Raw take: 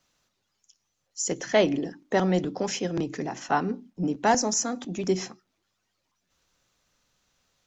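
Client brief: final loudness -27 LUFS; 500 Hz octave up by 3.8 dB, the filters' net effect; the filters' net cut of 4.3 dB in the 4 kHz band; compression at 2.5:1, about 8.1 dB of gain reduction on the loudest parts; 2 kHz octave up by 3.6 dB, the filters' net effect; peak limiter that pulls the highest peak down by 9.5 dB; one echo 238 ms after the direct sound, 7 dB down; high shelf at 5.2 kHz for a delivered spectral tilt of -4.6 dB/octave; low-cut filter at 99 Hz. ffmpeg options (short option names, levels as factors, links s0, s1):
-af "highpass=99,equalizer=f=500:t=o:g=5,equalizer=f=2000:t=o:g=6,equalizer=f=4000:t=o:g=-4.5,highshelf=f=5200:g=-7.5,acompressor=threshold=0.0562:ratio=2.5,alimiter=limit=0.0841:level=0:latency=1,aecho=1:1:238:0.447,volume=1.68"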